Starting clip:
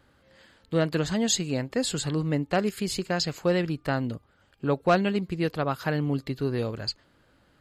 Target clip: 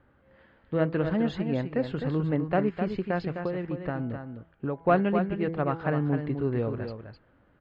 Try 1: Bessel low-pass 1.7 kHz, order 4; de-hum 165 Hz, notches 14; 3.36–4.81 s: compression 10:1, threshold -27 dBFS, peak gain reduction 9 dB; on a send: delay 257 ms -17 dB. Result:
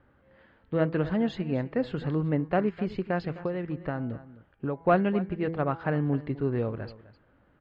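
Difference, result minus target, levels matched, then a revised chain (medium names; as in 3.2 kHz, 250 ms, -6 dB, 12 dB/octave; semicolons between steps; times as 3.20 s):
echo-to-direct -9.5 dB
Bessel low-pass 1.7 kHz, order 4; de-hum 165 Hz, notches 14; 3.36–4.81 s: compression 10:1, threshold -27 dBFS, peak gain reduction 9 dB; on a send: delay 257 ms -7.5 dB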